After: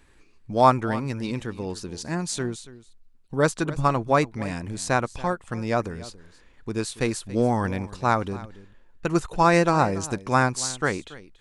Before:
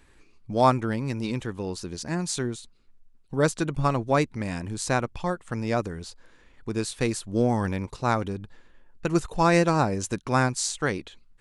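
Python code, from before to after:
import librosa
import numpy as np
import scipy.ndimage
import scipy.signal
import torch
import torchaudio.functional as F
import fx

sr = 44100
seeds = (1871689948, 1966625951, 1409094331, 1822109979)

y = x + 10.0 ** (-17.0 / 20.0) * np.pad(x, (int(282 * sr / 1000.0), 0))[:len(x)]
y = fx.dynamic_eq(y, sr, hz=1100.0, q=0.75, threshold_db=-34.0, ratio=4.0, max_db=4)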